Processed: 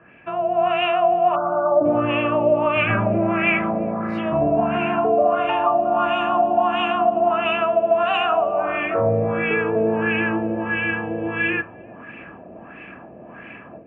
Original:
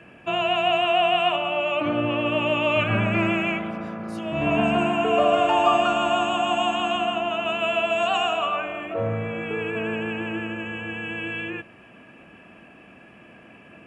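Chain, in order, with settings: de-hum 103.4 Hz, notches 29; spectral selection erased 1.35–1.85 s, 1.6–5.2 kHz; compression, threshold -24 dBFS, peak gain reduction 10 dB; LFO low-pass sine 1.5 Hz 580–2300 Hz; level rider gain up to 11 dB; on a send: filtered feedback delay 348 ms, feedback 73%, low-pass 820 Hz, level -22.5 dB; on the sum: trim -4 dB

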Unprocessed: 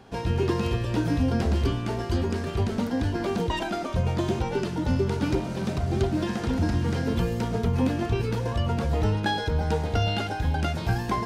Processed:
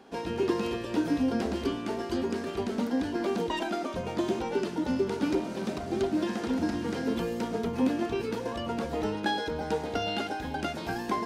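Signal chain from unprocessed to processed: resonant low shelf 170 Hz -13 dB, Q 1.5; trim -3 dB

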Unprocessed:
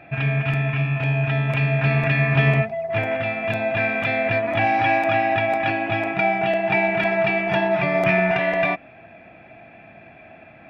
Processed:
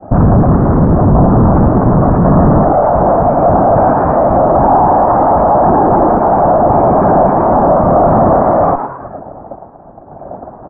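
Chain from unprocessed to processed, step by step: expander -37 dBFS; whisper effect; valve stage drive 29 dB, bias 0.7; square tremolo 0.89 Hz, depth 60%, duty 50%; steep low-pass 1.2 kHz 48 dB/octave; frequency-shifting echo 108 ms, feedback 44%, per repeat +130 Hz, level -11.5 dB; loudness maximiser +33 dB; endings held to a fixed fall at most 240 dB/s; trim -1 dB

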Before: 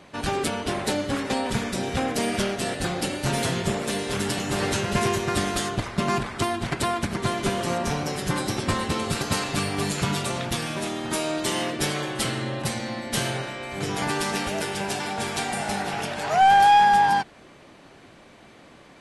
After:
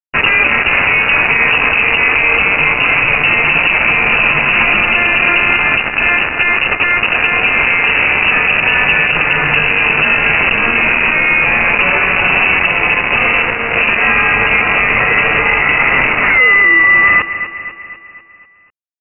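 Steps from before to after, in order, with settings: compression 4:1, threshold -25 dBFS, peak gain reduction 9.5 dB; bit crusher 5-bit; feedback delay 247 ms, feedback 54%, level -13 dB; frequency inversion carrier 2.8 kHz; loudness maximiser +20 dB; trim -1 dB

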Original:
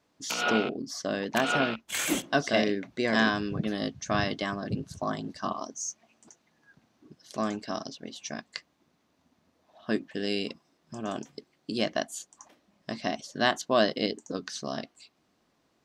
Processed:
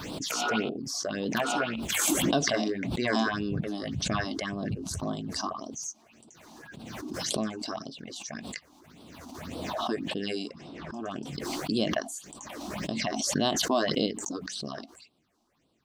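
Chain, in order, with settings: 10.14–11.22 s: level-controlled noise filter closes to 2.4 kHz, open at -25.5 dBFS; phase shifter stages 6, 1.8 Hz, lowest notch 120–1900 Hz; swell ahead of each attack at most 25 dB/s

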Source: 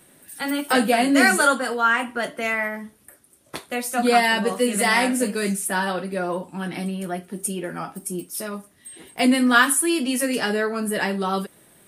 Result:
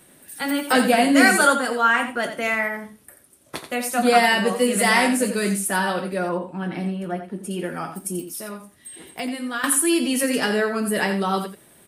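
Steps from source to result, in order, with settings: 6.29–7.51 s: low-pass 1.9 kHz 6 dB/octave; 8.24–9.64 s: compression 2.5:1, threshold -33 dBFS, peak gain reduction 15 dB; delay 86 ms -9.5 dB; trim +1 dB

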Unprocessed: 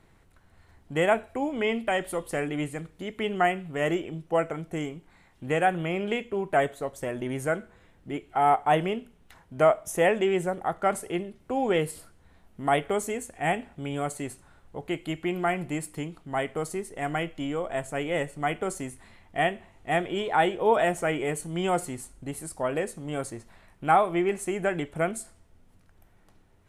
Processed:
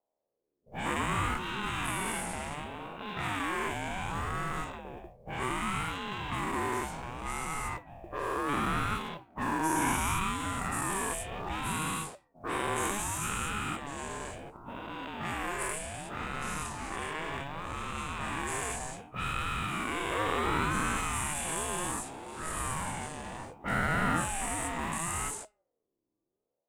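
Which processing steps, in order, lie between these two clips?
every event in the spectrogram widened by 480 ms; dynamic bell 8.1 kHz, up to +6 dB, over -45 dBFS, Q 1.7; spectral noise reduction 11 dB; tilt EQ +1.5 dB/octave; feedback comb 210 Hz, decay 0.63 s, harmonics all, mix 50%; in parallel at -11.5 dB: Schmitt trigger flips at -26.5 dBFS; on the sum: level-controlled noise filter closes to 310 Hz, open at -20 dBFS; modulation noise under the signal 34 dB; ring modulator with a swept carrier 480 Hz, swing 35%, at 0.67 Hz; trim -7.5 dB

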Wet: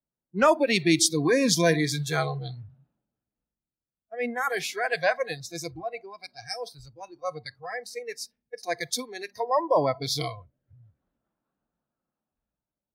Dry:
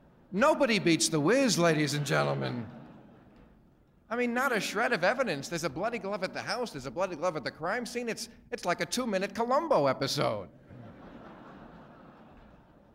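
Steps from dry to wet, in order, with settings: spectral noise reduction 22 dB; three bands expanded up and down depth 40%; trim +2.5 dB

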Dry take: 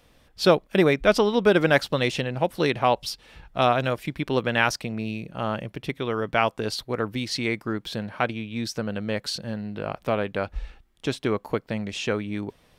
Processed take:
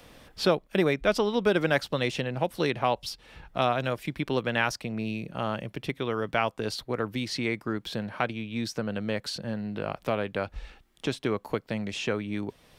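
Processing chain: three bands compressed up and down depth 40%; trim -4 dB

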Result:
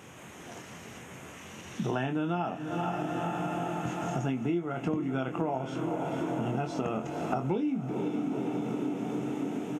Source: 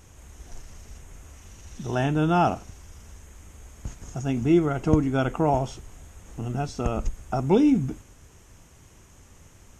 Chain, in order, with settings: high-pass 140 Hz 24 dB/octave; resonant high shelf 3.8 kHz -7 dB, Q 1.5; doubling 23 ms -7 dB; echo that smears into a reverb 477 ms, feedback 70%, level -12.5 dB; compression 8:1, threshold -35 dBFS, peak gain reduction 22 dB; trim +7 dB

